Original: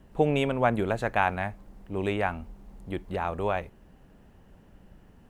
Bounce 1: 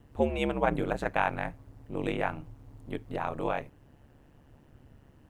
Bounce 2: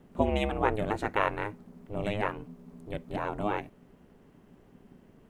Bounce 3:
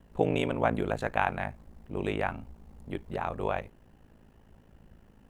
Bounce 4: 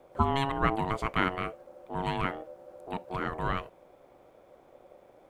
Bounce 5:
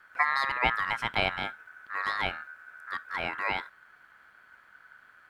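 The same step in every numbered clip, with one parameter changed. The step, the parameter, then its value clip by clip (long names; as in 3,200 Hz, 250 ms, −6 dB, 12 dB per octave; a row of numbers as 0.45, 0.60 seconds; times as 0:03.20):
ring modulation, frequency: 71, 210, 27, 550, 1,500 Hertz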